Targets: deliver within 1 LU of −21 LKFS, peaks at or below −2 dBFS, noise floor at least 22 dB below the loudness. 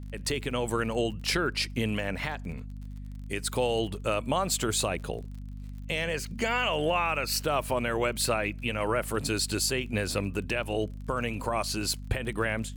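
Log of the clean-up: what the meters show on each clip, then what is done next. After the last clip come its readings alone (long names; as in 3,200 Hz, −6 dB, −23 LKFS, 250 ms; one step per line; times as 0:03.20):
crackle rate 31 per second; mains hum 50 Hz; hum harmonics up to 250 Hz; level of the hum −37 dBFS; integrated loudness −29.5 LKFS; sample peak −15.0 dBFS; target loudness −21.0 LKFS
→ click removal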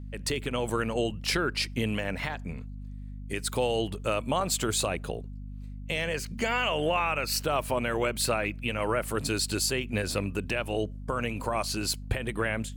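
crackle rate 0.70 per second; mains hum 50 Hz; hum harmonics up to 250 Hz; level of the hum −37 dBFS
→ mains-hum notches 50/100/150/200/250 Hz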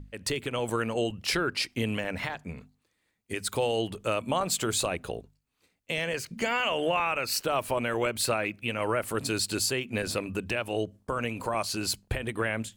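mains hum none found; integrated loudness −29.5 LKFS; sample peak −15.5 dBFS; target loudness −21.0 LKFS
→ level +8.5 dB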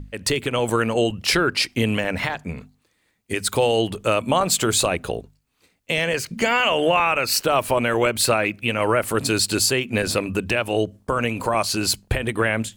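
integrated loudness −21.0 LKFS; sample peak −7.0 dBFS; background noise floor −67 dBFS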